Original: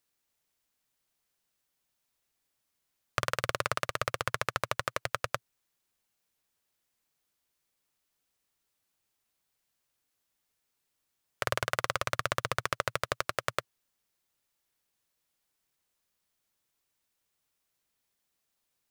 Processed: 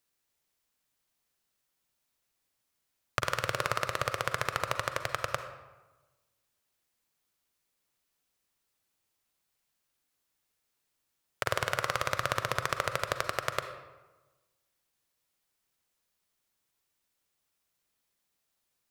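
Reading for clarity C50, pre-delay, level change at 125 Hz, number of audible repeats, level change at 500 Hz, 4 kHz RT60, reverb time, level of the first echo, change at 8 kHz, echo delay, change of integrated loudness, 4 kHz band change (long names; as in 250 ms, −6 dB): 9.0 dB, 38 ms, +1.0 dB, no echo audible, +1.0 dB, 0.75 s, 1.2 s, no echo audible, +0.5 dB, no echo audible, +0.5 dB, +0.5 dB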